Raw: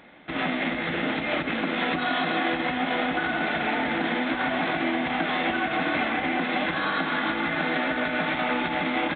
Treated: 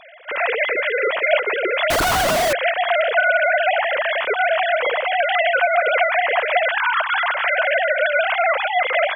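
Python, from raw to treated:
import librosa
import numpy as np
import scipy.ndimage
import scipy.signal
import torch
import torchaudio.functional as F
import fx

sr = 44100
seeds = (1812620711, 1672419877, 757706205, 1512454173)

y = fx.sine_speech(x, sr)
y = fx.notch(y, sr, hz=820.0, q=20.0)
y = fx.schmitt(y, sr, flips_db=-31.0, at=(1.9, 2.53))
y = y * librosa.db_to_amplitude(7.5)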